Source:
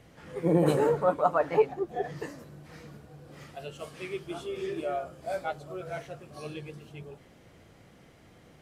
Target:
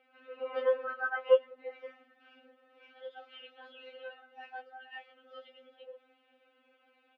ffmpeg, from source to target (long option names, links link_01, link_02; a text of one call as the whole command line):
ffmpeg -i in.wav -af "asetrate=52920,aresample=44100,highpass=460,equalizer=frequency=480:width_type=q:width=4:gain=5,equalizer=frequency=970:width_type=q:width=4:gain=-9,equalizer=frequency=1400:width_type=q:width=4:gain=9,equalizer=frequency=2800:width_type=q:width=4:gain=7,lowpass=frequency=3100:width=0.5412,lowpass=frequency=3100:width=1.3066,afftfilt=real='re*3.46*eq(mod(b,12),0)':imag='im*3.46*eq(mod(b,12),0)':win_size=2048:overlap=0.75,volume=-6.5dB" out.wav